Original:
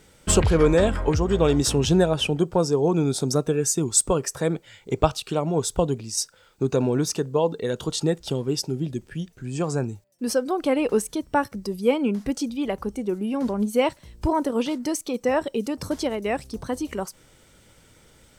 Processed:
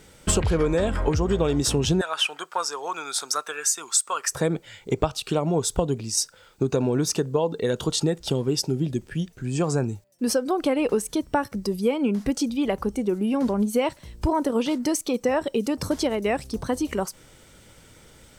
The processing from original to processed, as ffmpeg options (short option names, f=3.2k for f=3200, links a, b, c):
-filter_complex "[0:a]asettb=1/sr,asplit=3[a][b][c];[a]atrim=end=2.014[d];[b]atrim=start=2.01:end=4.32,asetpts=PTS-STARTPTS,afade=t=in:d=0.004:c=qsin,afade=t=out:st=2.306:d=0.004:c=qsin,highpass=f=1.3k:t=q:w=2.1[e];[c]atrim=start=4.316[f];[d][e]acrossfade=d=0.004:c1=hsin:c2=qsin[g];[g][f]acrossfade=d=0.004:c1=qsin:c2=hsin,acompressor=threshold=-22dB:ratio=6,volume=3.5dB"